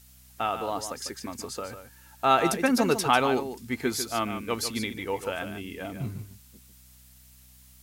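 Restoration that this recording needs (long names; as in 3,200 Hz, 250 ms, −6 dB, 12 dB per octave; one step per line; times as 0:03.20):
hum removal 63.3 Hz, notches 4
noise reduction from a noise print 19 dB
echo removal 148 ms −9.5 dB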